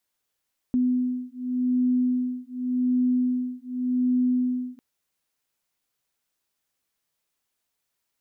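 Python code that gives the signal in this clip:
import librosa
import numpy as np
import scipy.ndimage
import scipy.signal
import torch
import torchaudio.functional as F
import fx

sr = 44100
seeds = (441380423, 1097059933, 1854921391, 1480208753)

y = fx.two_tone_beats(sr, length_s=4.05, hz=250.0, beat_hz=0.87, level_db=-24.5)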